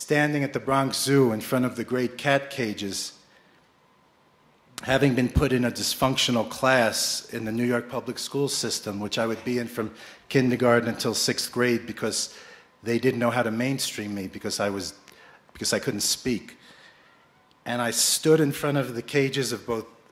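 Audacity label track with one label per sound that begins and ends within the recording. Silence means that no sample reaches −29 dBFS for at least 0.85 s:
4.780000	16.490000	sound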